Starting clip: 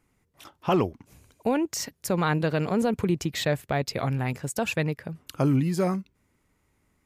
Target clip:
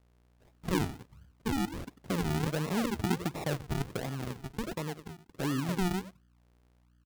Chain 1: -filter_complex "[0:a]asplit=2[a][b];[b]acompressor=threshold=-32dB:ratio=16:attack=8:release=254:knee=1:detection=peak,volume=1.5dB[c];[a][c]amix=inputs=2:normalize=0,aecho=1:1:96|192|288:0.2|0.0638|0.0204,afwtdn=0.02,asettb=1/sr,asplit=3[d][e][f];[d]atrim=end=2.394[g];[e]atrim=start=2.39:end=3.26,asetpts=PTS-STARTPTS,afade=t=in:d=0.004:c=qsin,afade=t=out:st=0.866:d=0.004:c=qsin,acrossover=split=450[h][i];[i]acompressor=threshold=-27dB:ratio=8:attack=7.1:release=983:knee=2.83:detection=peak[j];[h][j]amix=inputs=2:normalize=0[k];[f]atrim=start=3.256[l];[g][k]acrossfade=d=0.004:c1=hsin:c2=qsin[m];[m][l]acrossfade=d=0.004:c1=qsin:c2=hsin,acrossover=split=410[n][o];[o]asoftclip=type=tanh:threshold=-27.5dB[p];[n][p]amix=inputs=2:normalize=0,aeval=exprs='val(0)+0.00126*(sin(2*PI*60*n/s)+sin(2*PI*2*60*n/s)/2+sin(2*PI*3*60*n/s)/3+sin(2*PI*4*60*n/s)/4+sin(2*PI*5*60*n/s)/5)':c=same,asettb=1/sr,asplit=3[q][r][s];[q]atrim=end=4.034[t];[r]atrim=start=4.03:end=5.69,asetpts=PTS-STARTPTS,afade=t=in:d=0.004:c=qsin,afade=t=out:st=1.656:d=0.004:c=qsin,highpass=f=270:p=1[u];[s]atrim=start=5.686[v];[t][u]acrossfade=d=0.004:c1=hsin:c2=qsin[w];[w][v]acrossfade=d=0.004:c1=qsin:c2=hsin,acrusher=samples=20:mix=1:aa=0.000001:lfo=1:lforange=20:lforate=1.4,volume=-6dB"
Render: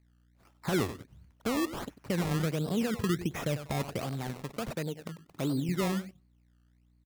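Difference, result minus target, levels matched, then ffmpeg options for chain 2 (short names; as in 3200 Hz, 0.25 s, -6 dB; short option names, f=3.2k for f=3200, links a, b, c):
decimation with a swept rate: distortion -11 dB; compressor: peak gain reduction -7 dB
-filter_complex "[0:a]asplit=2[a][b];[b]acompressor=threshold=-39.5dB:ratio=16:attack=8:release=254:knee=1:detection=peak,volume=1.5dB[c];[a][c]amix=inputs=2:normalize=0,aecho=1:1:96|192|288:0.2|0.0638|0.0204,afwtdn=0.02,asettb=1/sr,asplit=3[d][e][f];[d]atrim=end=2.394[g];[e]atrim=start=2.39:end=3.26,asetpts=PTS-STARTPTS,afade=t=in:d=0.004:c=qsin,afade=t=out:st=0.866:d=0.004:c=qsin,acrossover=split=450[h][i];[i]acompressor=threshold=-27dB:ratio=8:attack=7.1:release=983:knee=2.83:detection=peak[j];[h][j]amix=inputs=2:normalize=0[k];[f]atrim=start=3.256[l];[g][k]acrossfade=d=0.004:c1=hsin:c2=qsin[m];[m][l]acrossfade=d=0.004:c1=qsin:c2=hsin,acrossover=split=410[n][o];[o]asoftclip=type=tanh:threshold=-27.5dB[p];[n][p]amix=inputs=2:normalize=0,aeval=exprs='val(0)+0.00126*(sin(2*PI*60*n/s)+sin(2*PI*2*60*n/s)/2+sin(2*PI*3*60*n/s)/3+sin(2*PI*4*60*n/s)/4+sin(2*PI*5*60*n/s)/5)':c=same,asettb=1/sr,asplit=3[q][r][s];[q]atrim=end=4.034[t];[r]atrim=start=4.03:end=5.69,asetpts=PTS-STARTPTS,afade=t=in:d=0.004:c=qsin,afade=t=out:st=1.656:d=0.004:c=qsin,highpass=f=270:p=1[u];[s]atrim=start=5.686[v];[t][u]acrossfade=d=0.004:c1=hsin:c2=qsin[w];[w][v]acrossfade=d=0.004:c1=qsin:c2=hsin,acrusher=samples=56:mix=1:aa=0.000001:lfo=1:lforange=56:lforate=1.4,volume=-6dB"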